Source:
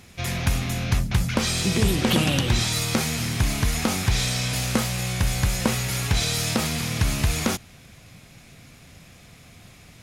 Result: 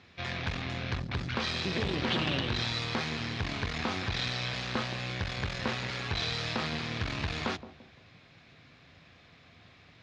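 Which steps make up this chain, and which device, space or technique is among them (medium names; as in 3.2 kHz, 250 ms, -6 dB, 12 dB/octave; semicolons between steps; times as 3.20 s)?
analogue delay pedal into a guitar amplifier (bucket-brigade echo 170 ms, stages 1024, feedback 37%, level -14 dB; valve stage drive 20 dB, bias 0.75; cabinet simulation 89–4500 Hz, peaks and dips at 130 Hz -4 dB, 200 Hz -6 dB, 1.1 kHz +3 dB, 1.7 kHz +4 dB, 3.9 kHz +3 dB); trim -2.5 dB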